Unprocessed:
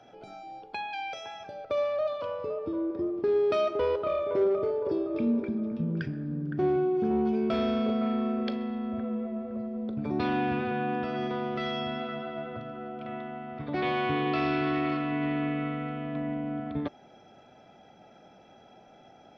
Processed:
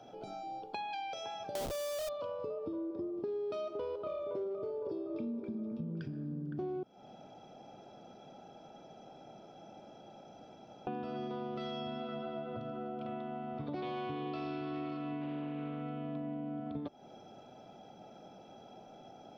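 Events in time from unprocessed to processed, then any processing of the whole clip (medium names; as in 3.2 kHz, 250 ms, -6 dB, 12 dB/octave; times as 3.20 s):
1.55–2.09 s: Schmitt trigger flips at -47 dBFS
6.83–10.87 s: room tone
15.21–15.82 s: loudspeaker Doppler distortion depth 0.13 ms
whole clip: peaking EQ 1.9 kHz -11.5 dB 0.81 oct; compression, threshold -39 dBFS; peaking EQ 62 Hz -13 dB 0.55 oct; trim +2 dB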